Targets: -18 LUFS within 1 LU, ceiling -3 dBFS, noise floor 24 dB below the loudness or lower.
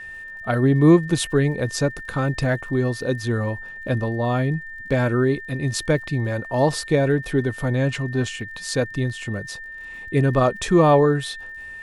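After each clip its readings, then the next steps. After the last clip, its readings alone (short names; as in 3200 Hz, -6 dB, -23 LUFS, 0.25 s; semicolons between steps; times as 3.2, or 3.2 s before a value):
ticks 50/s; steady tone 1800 Hz; tone level -34 dBFS; loudness -21.5 LUFS; peak -4.5 dBFS; loudness target -18.0 LUFS
-> de-click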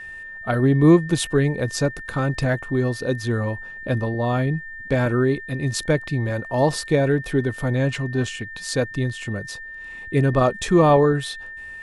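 ticks 0/s; steady tone 1800 Hz; tone level -34 dBFS
-> notch 1800 Hz, Q 30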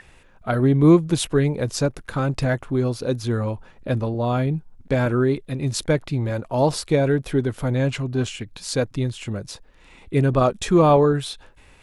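steady tone none; loudness -21.5 LUFS; peak -4.5 dBFS; loudness target -18.0 LUFS
-> gain +3.5 dB; limiter -3 dBFS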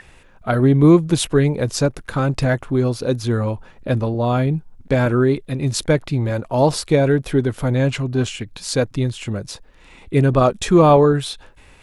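loudness -18.5 LUFS; peak -3.0 dBFS; noise floor -48 dBFS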